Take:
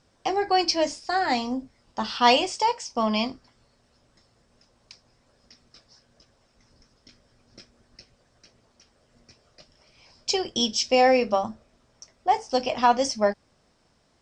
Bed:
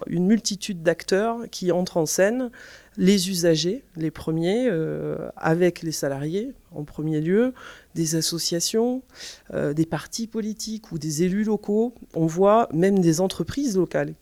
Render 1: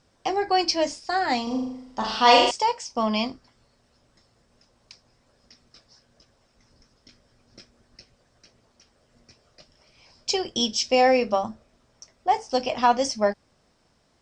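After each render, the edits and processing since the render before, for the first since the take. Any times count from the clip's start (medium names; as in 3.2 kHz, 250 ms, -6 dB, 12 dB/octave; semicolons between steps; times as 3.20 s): 1.43–2.51 s: flutter echo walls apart 6.7 m, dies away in 0.78 s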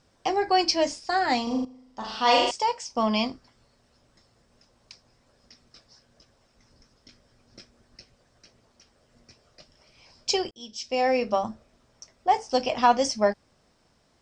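1.65–3.05 s: fade in, from -14 dB; 10.51–11.50 s: fade in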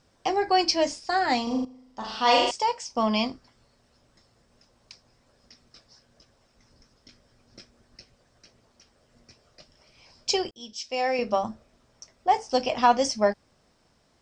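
10.73–11.19 s: bass shelf 400 Hz -9.5 dB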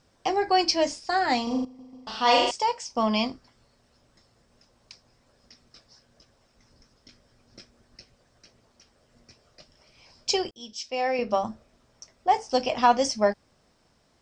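1.65 s: stutter in place 0.14 s, 3 plays; 10.90–11.30 s: distance through air 89 m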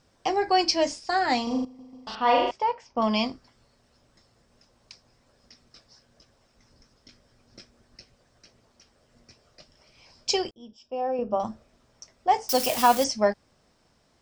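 2.15–3.02 s: low-pass 2.1 kHz; 10.52–11.40 s: boxcar filter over 21 samples; 12.49–13.04 s: zero-crossing glitches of -19.5 dBFS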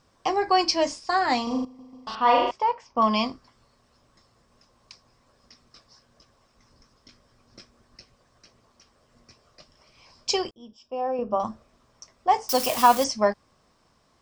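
peaking EQ 1.1 kHz +9 dB 0.29 oct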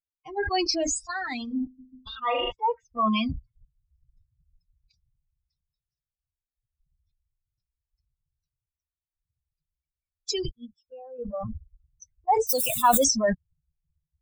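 expander on every frequency bin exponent 3; decay stretcher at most 24 dB/s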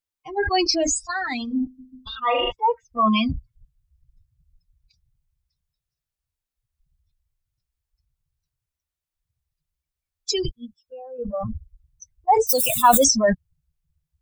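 trim +5 dB; peak limiter -2 dBFS, peak gain reduction 1 dB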